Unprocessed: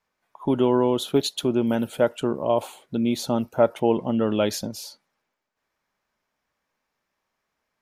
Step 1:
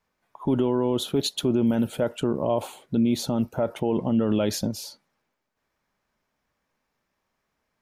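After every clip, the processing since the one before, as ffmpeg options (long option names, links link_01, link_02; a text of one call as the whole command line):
ffmpeg -i in.wav -af "lowshelf=frequency=340:gain=7,alimiter=limit=-14dB:level=0:latency=1:release=31" out.wav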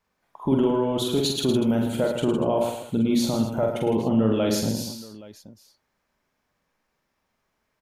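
ffmpeg -i in.wav -af "aecho=1:1:45|79|108|159|240|825:0.631|0.126|0.398|0.355|0.2|0.106" out.wav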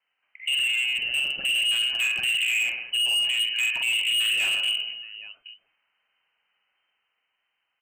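ffmpeg -i in.wav -af "lowpass=frequency=2600:width_type=q:width=0.5098,lowpass=frequency=2600:width_type=q:width=0.6013,lowpass=frequency=2600:width_type=q:width=0.9,lowpass=frequency=2600:width_type=q:width=2.563,afreqshift=-3100,dynaudnorm=framelen=490:gausssize=5:maxgain=3.5dB,volume=19dB,asoftclip=hard,volume=-19dB,volume=-2dB" out.wav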